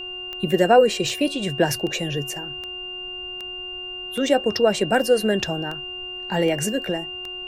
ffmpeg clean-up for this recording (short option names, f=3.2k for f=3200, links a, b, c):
-af "adeclick=t=4,bandreject=f=365.1:t=h:w=4,bandreject=f=730.2:t=h:w=4,bandreject=f=1.0953k:t=h:w=4,bandreject=f=1.4604k:t=h:w=4,bandreject=f=2.8k:w=30,agate=range=-21dB:threshold=-25dB"